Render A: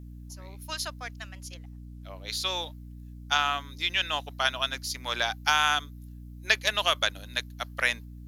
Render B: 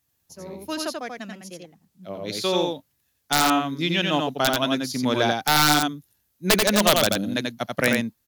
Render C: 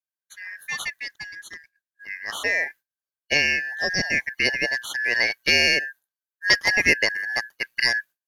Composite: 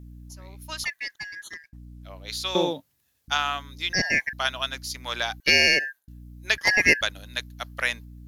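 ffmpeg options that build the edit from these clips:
-filter_complex "[2:a]asplit=4[s0][s1][s2][s3];[0:a]asplit=6[s4][s5][s6][s7][s8][s9];[s4]atrim=end=0.842[s10];[s0]atrim=start=0.838:end=1.732[s11];[s5]atrim=start=1.728:end=2.552[s12];[1:a]atrim=start=2.548:end=3.282[s13];[s6]atrim=start=3.278:end=3.932[s14];[s1]atrim=start=3.928:end=4.332[s15];[s7]atrim=start=4.328:end=5.402[s16];[s2]atrim=start=5.398:end=6.082[s17];[s8]atrim=start=6.078:end=6.582[s18];[s3]atrim=start=6.578:end=7.012[s19];[s9]atrim=start=7.008[s20];[s10][s11]acrossfade=d=0.004:c1=hsin:c2=hsin[s21];[s21][s12]acrossfade=d=0.004:c1=hsin:c2=hsin[s22];[s22][s13]acrossfade=d=0.004:c1=hsin:c2=hsin[s23];[s23][s14]acrossfade=d=0.004:c1=hsin:c2=hsin[s24];[s24][s15]acrossfade=d=0.004:c1=hsin:c2=hsin[s25];[s25][s16]acrossfade=d=0.004:c1=hsin:c2=hsin[s26];[s26][s17]acrossfade=d=0.004:c1=hsin:c2=hsin[s27];[s27][s18]acrossfade=d=0.004:c1=hsin:c2=hsin[s28];[s28][s19]acrossfade=d=0.004:c1=hsin:c2=hsin[s29];[s29][s20]acrossfade=d=0.004:c1=hsin:c2=hsin"

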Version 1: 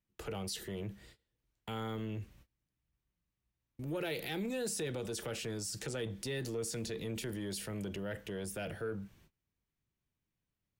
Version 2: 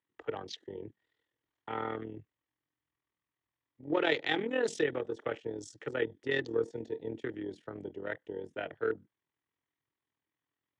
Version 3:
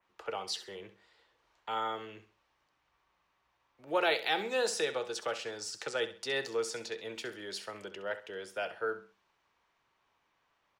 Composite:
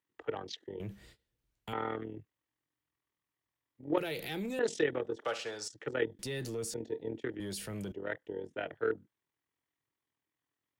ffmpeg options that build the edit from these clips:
-filter_complex "[0:a]asplit=4[s0][s1][s2][s3];[1:a]asplit=6[s4][s5][s6][s7][s8][s9];[s4]atrim=end=0.802[s10];[s0]atrim=start=0.798:end=1.732[s11];[s5]atrim=start=1.728:end=3.982[s12];[s1]atrim=start=3.978:end=4.592[s13];[s6]atrim=start=4.588:end=5.252[s14];[2:a]atrim=start=5.248:end=5.682[s15];[s7]atrim=start=5.678:end=6.192[s16];[s2]atrim=start=6.188:end=6.742[s17];[s8]atrim=start=6.738:end=7.402[s18];[s3]atrim=start=7.398:end=7.922[s19];[s9]atrim=start=7.918[s20];[s10][s11]acrossfade=d=0.004:c1=hsin:c2=hsin[s21];[s21][s12]acrossfade=d=0.004:c1=hsin:c2=hsin[s22];[s22][s13]acrossfade=d=0.004:c1=hsin:c2=hsin[s23];[s23][s14]acrossfade=d=0.004:c1=hsin:c2=hsin[s24];[s24][s15]acrossfade=d=0.004:c1=hsin:c2=hsin[s25];[s25][s16]acrossfade=d=0.004:c1=hsin:c2=hsin[s26];[s26][s17]acrossfade=d=0.004:c1=hsin:c2=hsin[s27];[s27][s18]acrossfade=d=0.004:c1=hsin:c2=hsin[s28];[s28][s19]acrossfade=d=0.004:c1=hsin:c2=hsin[s29];[s29][s20]acrossfade=d=0.004:c1=hsin:c2=hsin"

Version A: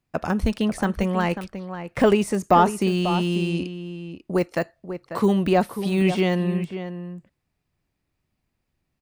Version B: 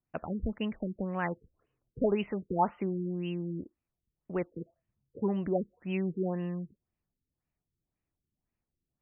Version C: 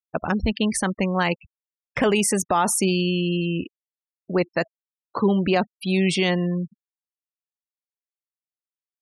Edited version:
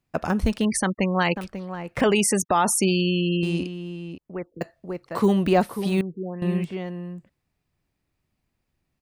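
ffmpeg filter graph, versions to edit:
-filter_complex "[2:a]asplit=2[s0][s1];[1:a]asplit=2[s2][s3];[0:a]asplit=5[s4][s5][s6][s7][s8];[s4]atrim=end=0.652[s9];[s0]atrim=start=0.648:end=1.362[s10];[s5]atrim=start=1.358:end=2.012[s11];[s1]atrim=start=2.008:end=3.432[s12];[s6]atrim=start=3.428:end=4.182[s13];[s2]atrim=start=4.178:end=4.612[s14];[s7]atrim=start=4.608:end=6.012[s15];[s3]atrim=start=6.008:end=6.422[s16];[s8]atrim=start=6.418[s17];[s9][s10]acrossfade=d=0.004:c1=hsin:c2=hsin[s18];[s18][s11]acrossfade=d=0.004:c1=hsin:c2=hsin[s19];[s19][s12]acrossfade=d=0.004:c1=hsin:c2=hsin[s20];[s20][s13]acrossfade=d=0.004:c1=hsin:c2=hsin[s21];[s21][s14]acrossfade=d=0.004:c1=hsin:c2=hsin[s22];[s22][s15]acrossfade=d=0.004:c1=hsin:c2=hsin[s23];[s23][s16]acrossfade=d=0.004:c1=hsin:c2=hsin[s24];[s24][s17]acrossfade=d=0.004:c1=hsin:c2=hsin"

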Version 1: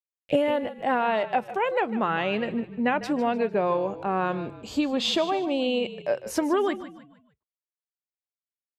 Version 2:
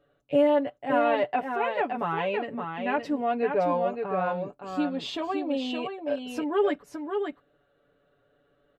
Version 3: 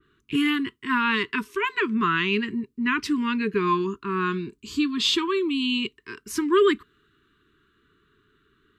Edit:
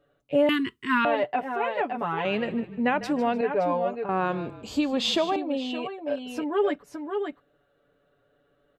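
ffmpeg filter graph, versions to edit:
-filter_complex "[0:a]asplit=2[s0][s1];[1:a]asplit=4[s2][s3][s4][s5];[s2]atrim=end=0.492[s6];[2:a]atrim=start=0.488:end=1.052[s7];[s3]atrim=start=1.048:end=2.252[s8];[s0]atrim=start=2.248:end=3.412[s9];[s4]atrim=start=3.408:end=4.092[s10];[s1]atrim=start=4.088:end=5.362[s11];[s5]atrim=start=5.358[s12];[s6][s7]acrossfade=d=0.004:c1=hsin:c2=hsin[s13];[s13][s8]acrossfade=d=0.004:c1=hsin:c2=hsin[s14];[s14][s9]acrossfade=d=0.004:c1=hsin:c2=hsin[s15];[s15][s10]acrossfade=d=0.004:c1=hsin:c2=hsin[s16];[s16][s11]acrossfade=d=0.004:c1=hsin:c2=hsin[s17];[s17][s12]acrossfade=d=0.004:c1=hsin:c2=hsin"

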